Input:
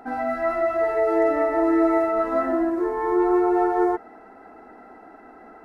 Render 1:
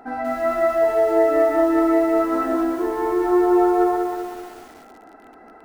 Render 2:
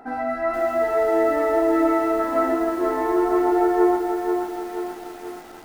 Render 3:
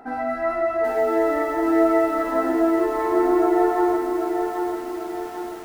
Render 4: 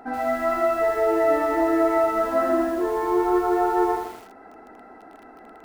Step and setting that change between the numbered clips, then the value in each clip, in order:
feedback echo at a low word length, delay time: 191, 481, 788, 80 milliseconds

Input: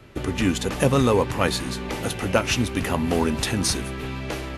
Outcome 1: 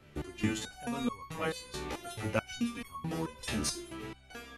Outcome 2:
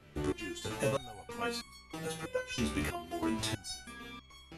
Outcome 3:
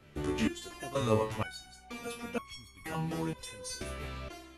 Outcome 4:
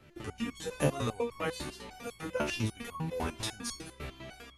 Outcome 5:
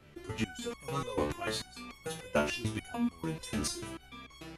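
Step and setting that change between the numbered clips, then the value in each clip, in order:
step-sequenced resonator, speed: 4.6, 3.1, 2.1, 10, 6.8 Hertz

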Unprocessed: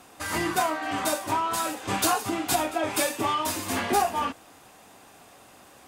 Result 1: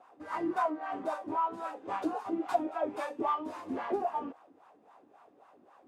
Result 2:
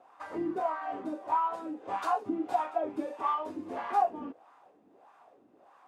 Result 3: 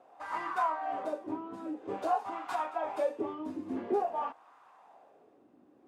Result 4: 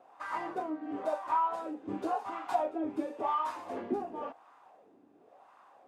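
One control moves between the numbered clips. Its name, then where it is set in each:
LFO wah, speed: 3.7, 1.6, 0.49, 0.94 Hertz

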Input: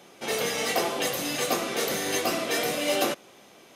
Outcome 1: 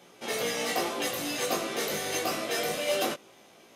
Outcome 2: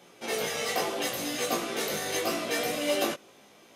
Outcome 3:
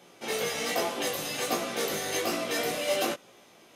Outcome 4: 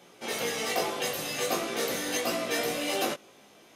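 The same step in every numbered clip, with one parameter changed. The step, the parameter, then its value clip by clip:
chorus effect, speed: 0.21, 0.74, 1.2, 0.44 Hertz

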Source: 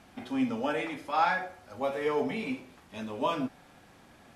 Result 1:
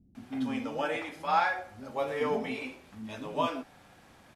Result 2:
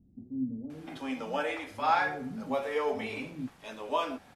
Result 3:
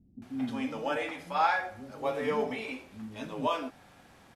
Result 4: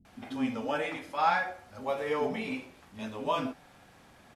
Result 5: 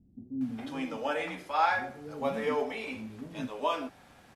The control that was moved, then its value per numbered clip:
multiband delay without the direct sound, delay time: 150, 700, 220, 50, 410 milliseconds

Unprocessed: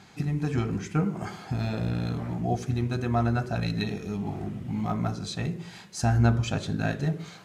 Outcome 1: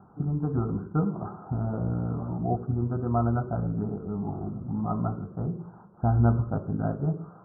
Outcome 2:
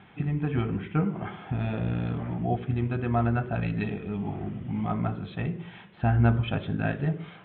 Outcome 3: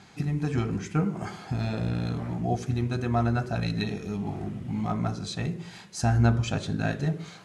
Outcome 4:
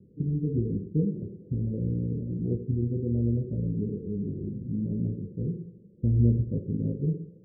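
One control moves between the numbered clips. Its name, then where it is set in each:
Butterworth low-pass, frequency: 1,400, 3,500, 12,000, 530 Hertz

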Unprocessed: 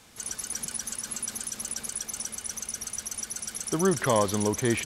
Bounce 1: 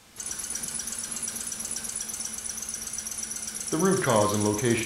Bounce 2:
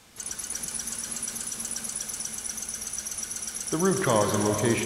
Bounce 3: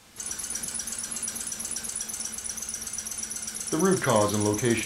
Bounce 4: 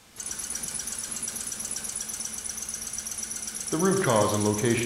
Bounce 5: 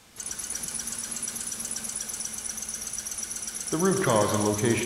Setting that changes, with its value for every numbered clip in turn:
reverb whose tail is shaped and stops, gate: 120, 540, 80, 180, 340 milliseconds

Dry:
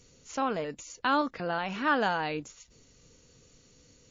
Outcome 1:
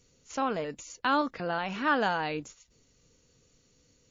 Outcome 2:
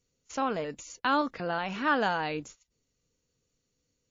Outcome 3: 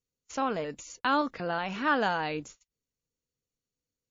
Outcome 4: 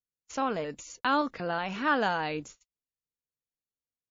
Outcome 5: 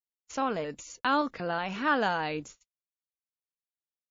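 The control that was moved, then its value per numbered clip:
noise gate, range: −6, −19, −32, −45, −58 decibels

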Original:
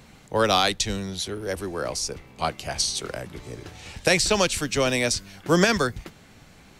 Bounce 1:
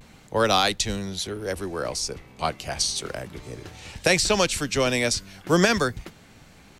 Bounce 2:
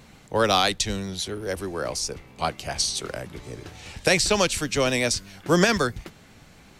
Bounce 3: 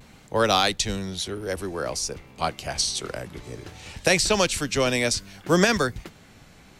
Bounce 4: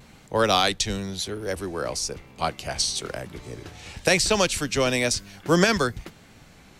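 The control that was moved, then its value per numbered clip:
pitch vibrato, speed: 0.36, 7.8, 0.57, 1 Hertz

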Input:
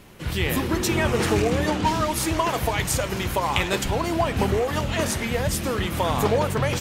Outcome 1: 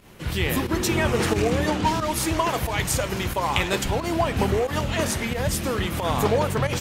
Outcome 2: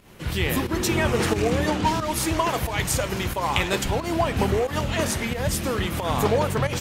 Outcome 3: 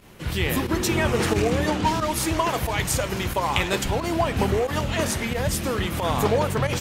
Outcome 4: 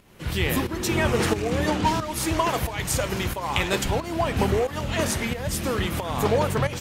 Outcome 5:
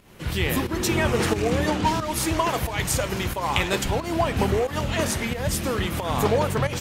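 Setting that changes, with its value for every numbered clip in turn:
fake sidechain pumping, release: 92, 150, 61, 462, 226 milliseconds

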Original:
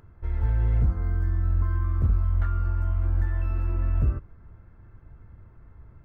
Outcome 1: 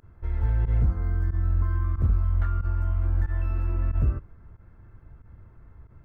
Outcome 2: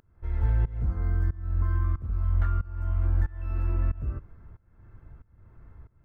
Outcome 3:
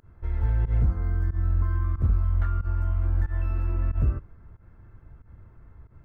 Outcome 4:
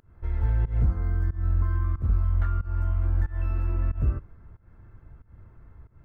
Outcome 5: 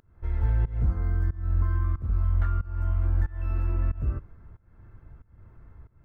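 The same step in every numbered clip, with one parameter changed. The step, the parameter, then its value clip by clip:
fake sidechain pumping, release: 61, 517, 102, 204, 347 milliseconds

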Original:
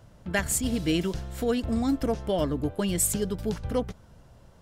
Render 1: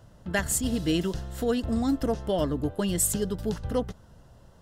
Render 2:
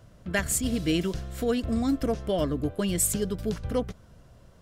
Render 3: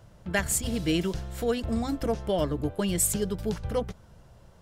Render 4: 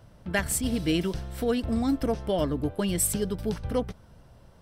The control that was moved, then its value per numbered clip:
notch filter, centre frequency: 2,300, 860, 260, 6,900 Hertz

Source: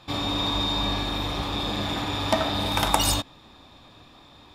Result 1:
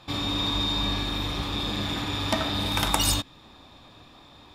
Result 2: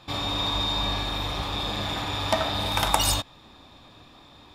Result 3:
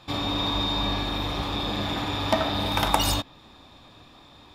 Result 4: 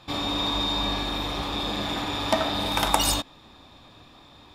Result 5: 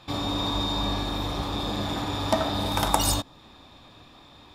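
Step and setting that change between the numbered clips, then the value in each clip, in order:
dynamic equaliser, frequency: 700, 270, 8,400, 100, 2,500 Hertz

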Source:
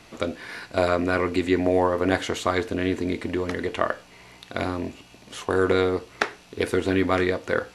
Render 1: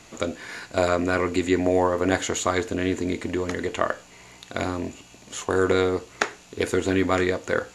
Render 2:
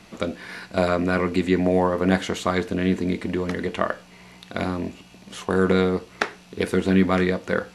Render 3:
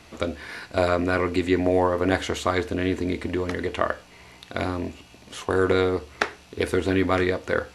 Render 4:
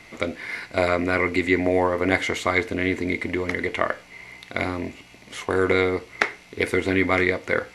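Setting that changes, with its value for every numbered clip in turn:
parametric band, centre frequency: 6,900, 190, 74, 2,100 Hertz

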